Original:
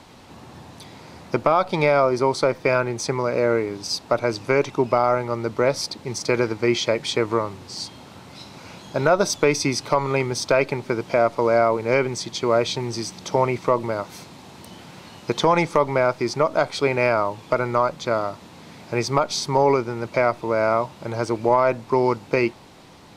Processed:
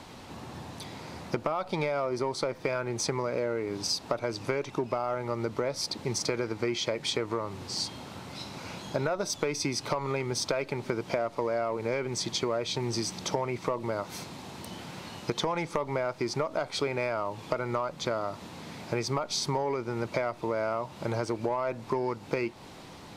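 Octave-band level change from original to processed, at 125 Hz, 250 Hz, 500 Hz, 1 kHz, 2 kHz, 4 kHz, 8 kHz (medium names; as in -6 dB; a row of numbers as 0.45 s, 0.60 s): -7.5 dB, -8.5 dB, -10.5 dB, -11.0 dB, -10.5 dB, -4.5 dB, -4.5 dB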